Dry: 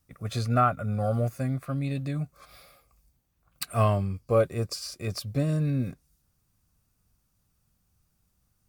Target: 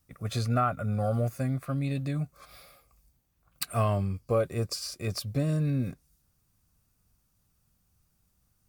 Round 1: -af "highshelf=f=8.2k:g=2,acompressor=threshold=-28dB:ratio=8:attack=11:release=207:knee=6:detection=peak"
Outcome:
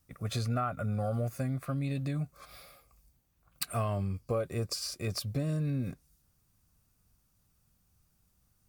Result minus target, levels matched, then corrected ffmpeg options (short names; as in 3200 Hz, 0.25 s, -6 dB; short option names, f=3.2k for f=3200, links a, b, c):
compressor: peak gain reduction +6.5 dB
-af "highshelf=f=8.2k:g=2,acompressor=threshold=-20.5dB:ratio=8:attack=11:release=207:knee=6:detection=peak"